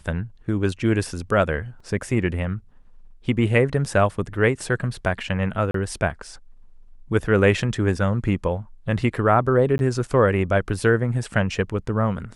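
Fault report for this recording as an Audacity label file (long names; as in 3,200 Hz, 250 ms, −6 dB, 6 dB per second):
1.800000	1.800000	drop-out 3.8 ms
5.710000	5.740000	drop-out 33 ms
9.780000	9.790000	drop-out 11 ms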